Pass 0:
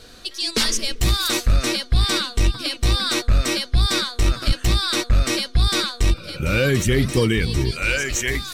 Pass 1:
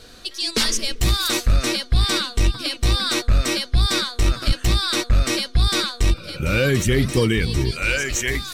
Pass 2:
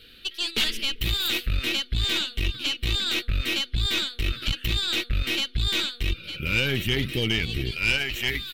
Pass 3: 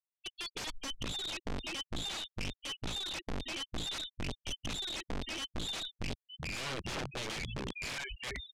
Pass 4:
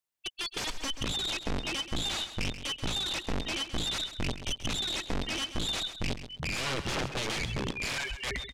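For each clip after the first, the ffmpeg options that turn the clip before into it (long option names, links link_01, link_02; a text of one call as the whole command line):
ffmpeg -i in.wav -af anull out.wav
ffmpeg -i in.wav -af "firequalizer=gain_entry='entry(410,0);entry(910,-22);entry(1300,-1);entry(2900,14);entry(6200,-14);entry(14000,9)':delay=0.05:min_phase=1,aeval=exprs='(tanh(2.51*val(0)+0.6)-tanh(0.6))/2.51':channel_layout=same,volume=-6dB" out.wav
ffmpeg -i in.wav -af "afftfilt=real='re*gte(hypot(re,im),0.126)':imag='im*gte(hypot(re,im),0.126)':win_size=1024:overlap=0.75,aeval=exprs='(mod(14.1*val(0)+1,2)-1)/14.1':channel_layout=same,lowpass=5700,volume=-8.5dB" out.wav
ffmpeg -i in.wav -af "aecho=1:1:132|264|396:0.266|0.0559|0.0117,volume=6dB" out.wav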